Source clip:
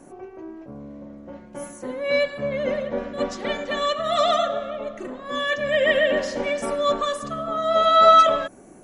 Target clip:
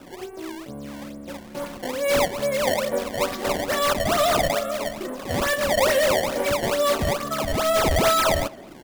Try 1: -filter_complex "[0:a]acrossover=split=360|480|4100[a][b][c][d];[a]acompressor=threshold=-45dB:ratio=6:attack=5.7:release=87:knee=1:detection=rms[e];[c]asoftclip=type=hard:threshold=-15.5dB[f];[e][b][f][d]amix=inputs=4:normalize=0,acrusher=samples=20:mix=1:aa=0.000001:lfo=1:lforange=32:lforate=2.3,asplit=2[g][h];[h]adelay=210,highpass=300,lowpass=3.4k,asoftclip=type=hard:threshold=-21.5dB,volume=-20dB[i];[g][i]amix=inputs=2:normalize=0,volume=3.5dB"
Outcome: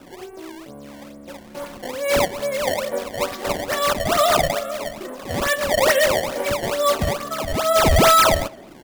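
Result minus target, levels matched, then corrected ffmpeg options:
compressor: peak gain reduction +6 dB; hard clip: distortion -7 dB
-filter_complex "[0:a]acrossover=split=360|480|4100[a][b][c][d];[a]acompressor=threshold=-38dB:ratio=6:attack=5.7:release=87:knee=1:detection=rms[e];[c]asoftclip=type=hard:threshold=-24.5dB[f];[e][b][f][d]amix=inputs=4:normalize=0,acrusher=samples=20:mix=1:aa=0.000001:lfo=1:lforange=32:lforate=2.3,asplit=2[g][h];[h]adelay=210,highpass=300,lowpass=3.4k,asoftclip=type=hard:threshold=-21.5dB,volume=-20dB[i];[g][i]amix=inputs=2:normalize=0,volume=3.5dB"

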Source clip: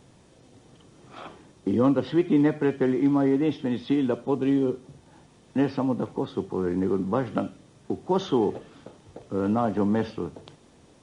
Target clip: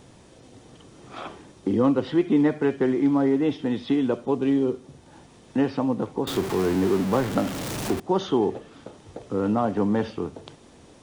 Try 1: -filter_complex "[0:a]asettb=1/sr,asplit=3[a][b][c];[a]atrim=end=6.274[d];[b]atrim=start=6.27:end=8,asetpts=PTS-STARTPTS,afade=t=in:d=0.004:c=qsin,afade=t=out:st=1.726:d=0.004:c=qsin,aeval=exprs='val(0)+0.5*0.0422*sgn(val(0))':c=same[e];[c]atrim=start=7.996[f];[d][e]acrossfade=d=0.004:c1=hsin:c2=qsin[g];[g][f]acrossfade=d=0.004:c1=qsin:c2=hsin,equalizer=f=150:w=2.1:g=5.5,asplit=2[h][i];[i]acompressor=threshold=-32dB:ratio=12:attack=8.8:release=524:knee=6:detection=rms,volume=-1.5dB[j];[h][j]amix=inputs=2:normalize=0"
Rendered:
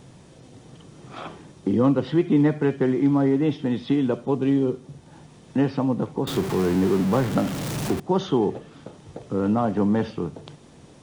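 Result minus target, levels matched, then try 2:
125 Hz band +4.5 dB
-filter_complex "[0:a]asettb=1/sr,asplit=3[a][b][c];[a]atrim=end=6.274[d];[b]atrim=start=6.27:end=8,asetpts=PTS-STARTPTS,afade=t=in:d=0.004:c=qsin,afade=t=out:st=1.726:d=0.004:c=qsin,aeval=exprs='val(0)+0.5*0.0422*sgn(val(0))':c=same[e];[c]atrim=start=7.996[f];[d][e]acrossfade=d=0.004:c1=hsin:c2=qsin[g];[g][f]acrossfade=d=0.004:c1=qsin:c2=hsin,equalizer=f=150:w=2.1:g=-3,asplit=2[h][i];[i]acompressor=threshold=-32dB:ratio=12:attack=8.8:release=524:knee=6:detection=rms,volume=-1.5dB[j];[h][j]amix=inputs=2:normalize=0"

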